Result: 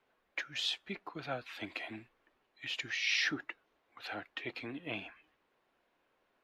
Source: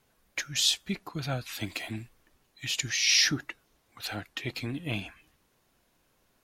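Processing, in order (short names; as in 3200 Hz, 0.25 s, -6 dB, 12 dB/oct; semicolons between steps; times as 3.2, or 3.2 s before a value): three-band isolator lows -16 dB, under 280 Hz, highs -22 dB, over 3400 Hz; gain -2.5 dB; AAC 96 kbps 32000 Hz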